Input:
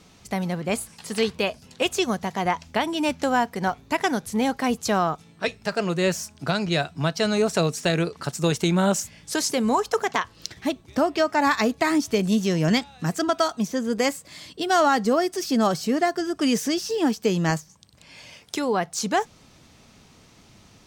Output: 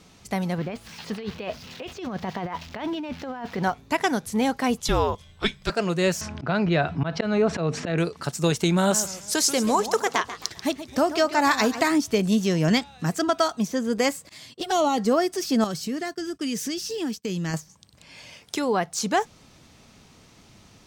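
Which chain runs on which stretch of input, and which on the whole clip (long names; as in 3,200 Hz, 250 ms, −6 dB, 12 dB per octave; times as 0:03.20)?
0:00.58–0:03.63: spike at every zero crossing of −24.5 dBFS + compressor whose output falls as the input rises −29 dBFS + high-frequency loss of the air 250 metres
0:04.80–0:05.70: parametric band 3,600 Hz +9.5 dB 0.23 octaves + frequency shifter −250 Hz
0:06.21–0:07.98: low-pass filter 2,300 Hz + volume swells 193 ms + envelope flattener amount 50%
0:08.77–0:11.88: bass and treble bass −2 dB, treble +5 dB + feedback echo with a swinging delay time 133 ms, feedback 39%, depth 204 cents, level −12.5 dB
0:14.29–0:14.98: noise gate −47 dBFS, range −16 dB + high-shelf EQ 6,100 Hz +2.5 dB + flanger swept by the level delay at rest 11.5 ms, full sweep at −18.5 dBFS
0:15.64–0:17.54: parametric band 770 Hz −9.5 dB 1.7 octaves + downward compressor 2.5 to 1, threshold −26 dBFS + downward expander −35 dBFS
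whole clip: no processing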